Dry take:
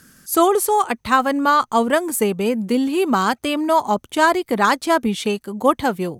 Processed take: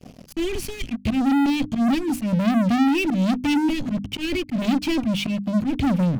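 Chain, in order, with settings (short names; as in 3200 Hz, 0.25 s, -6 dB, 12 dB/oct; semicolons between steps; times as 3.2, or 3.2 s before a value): one diode to ground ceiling -7.5 dBFS; Chebyshev band-stop 270–2500 Hz, order 4; air absorption 310 m; auto swell 0.164 s; bell 3700 Hz -11 dB 0.61 oct; sample leveller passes 5; notches 50/100/150/200/250/300 Hz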